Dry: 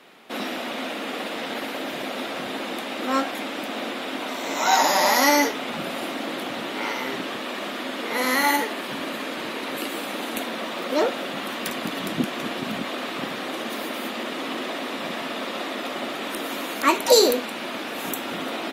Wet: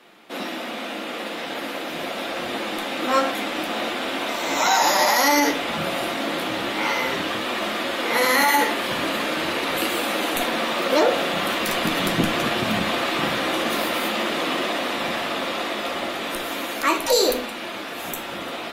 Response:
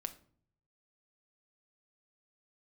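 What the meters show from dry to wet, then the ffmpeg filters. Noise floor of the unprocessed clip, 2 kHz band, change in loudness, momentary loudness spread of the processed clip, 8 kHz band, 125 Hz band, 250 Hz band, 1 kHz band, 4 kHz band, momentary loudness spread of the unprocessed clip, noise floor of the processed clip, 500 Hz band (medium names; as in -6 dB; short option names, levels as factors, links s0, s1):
-32 dBFS, +4.0 dB, +3.0 dB, 12 LU, +1.5 dB, +7.0 dB, +2.0 dB, +2.5 dB, +3.5 dB, 12 LU, -32 dBFS, +2.0 dB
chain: -filter_complex "[0:a]bandreject=f=50:t=h:w=6,bandreject=f=100:t=h:w=6,bandreject=f=150:t=h:w=6,asubboost=boost=6.5:cutoff=79,dynaudnorm=f=370:g=13:m=3.76,flanger=delay=8:depth=9.6:regen=-41:speed=0.4:shape=triangular[s0];[1:a]atrim=start_sample=2205[s1];[s0][s1]afir=irnorm=-1:irlink=0,alimiter=level_in=4.47:limit=0.891:release=50:level=0:latency=1,volume=0.422"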